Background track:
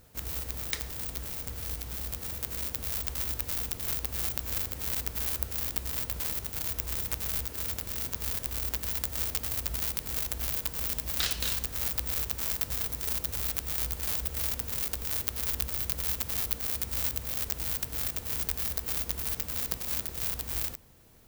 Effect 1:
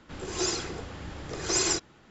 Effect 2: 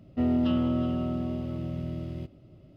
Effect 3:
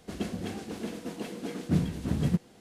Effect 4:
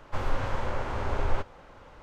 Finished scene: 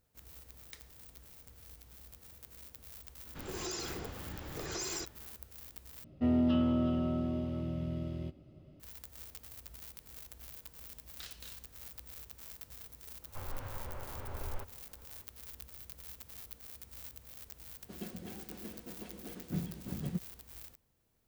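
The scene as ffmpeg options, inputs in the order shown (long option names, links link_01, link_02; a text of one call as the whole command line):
ffmpeg -i bed.wav -i cue0.wav -i cue1.wav -i cue2.wav -i cue3.wav -filter_complex "[0:a]volume=-18dB[link_01];[1:a]acompressor=threshold=-30dB:ratio=6:attack=3.2:release=140:knee=1:detection=peak[link_02];[2:a]asplit=2[link_03][link_04];[link_04]adelay=13,volume=-11dB[link_05];[link_03][link_05]amix=inputs=2:normalize=0[link_06];[4:a]equalizer=frequency=89:width_type=o:width=0.77:gain=5[link_07];[3:a]aecho=1:1:5.4:0.31[link_08];[link_01]asplit=2[link_09][link_10];[link_09]atrim=end=6.044[link_11];[link_06]atrim=end=2.76,asetpts=PTS-STARTPTS,volume=-4dB[link_12];[link_10]atrim=start=8.796[link_13];[link_02]atrim=end=2.1,asetpts=PTS-STARTPTS,volume=-5dB,afade=type=in:duration=0.004:curve=hsin,afade=type=out:start_time=2.096:duration=0.004:curve=hsin,adelay=3260[link_14];[link_07]atrim=end=2.02,asetpts=PTS-STARTPTS,volume=-14.5dB,afade=type=in:duration=0.004:curve=hsin,afade=type=out:start_time=2.016:duration=0.004:curve=hsin,adelay=13220[link_15];[link_08]atrim=end=2.6,asetpts=PTS-STARTPTS,volume=-12dB,afade=type=in:duration=0.004:curve=hsin,afade=type=out:start_time=2.596:duration=0.004:curve=hsin,adelay=17810[link_16];[link_11][link_12]acrossfade=duration=0.004:curve1=hsin:curve2=hsin[link_17];[link_17][link_13]acrossfade=duration=0.004:curve1=hsin:curve2=hsin[link_18];[link_18][link_14][link_15][link_16]amix=inputs=4:normalize=0" out.wav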